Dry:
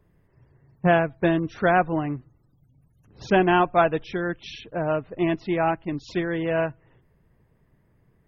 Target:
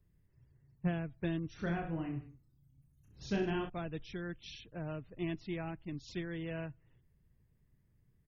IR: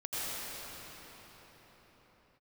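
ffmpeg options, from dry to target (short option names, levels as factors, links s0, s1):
-filter_complex "[0:a]acrossover=split=460[s0][s1];[s1]acompressor=threshold=0.0631:ratio=6[s2];[s0][s2]amix=inputs=2:normalize=0,equalizer=f=770:w=0.35:g=-15,asplit=3[s3][s4][s5];[s3]afade=t=out:st=1.58:d=0.02[s6];[s4]aecho=1:1:30|64.5|104.2|149.8|202.3:0.631|0.398|0.251|0.158|0.1,afade=t=in:st=1.58:d=0.02,afade=t=out:st=3.68:d=0.02[s7];[s5]afade=t=in:st=3.68:d=0.02[s8];[s6][s7][s8]amix=inputs=3:normalize=0,volume=0.562"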